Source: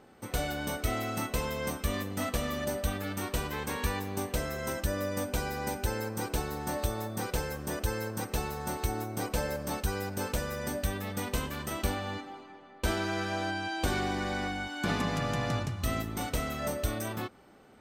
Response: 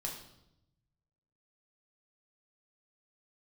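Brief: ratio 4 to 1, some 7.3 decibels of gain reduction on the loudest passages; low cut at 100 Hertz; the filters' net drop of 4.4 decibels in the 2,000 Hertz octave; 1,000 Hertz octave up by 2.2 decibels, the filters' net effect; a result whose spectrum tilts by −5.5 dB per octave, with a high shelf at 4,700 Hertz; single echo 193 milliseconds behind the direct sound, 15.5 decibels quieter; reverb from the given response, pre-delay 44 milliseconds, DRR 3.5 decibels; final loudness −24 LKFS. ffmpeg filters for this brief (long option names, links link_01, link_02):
-filter_complex "[0:a]highpass=100,equalizer=frequency=1000:width_type=o:gain=5,equalizer=frequency=2000:width_type=o:gain=-7,highshelf=frequency=4700:gain=-9,acompressor=threshold=-37dB:ratio=4,aecho=1:1:193:0.168,asplit=2[link_01][link_02];[1:a]atrim=start_sample=2205,adelay=44[link_03];[link_02][link_03]afir=irnorm=-1:irlink=0,volume=-4dB[link_04];[link_01][link_04]amix=inputs=2:normalize=0,volume=15dB"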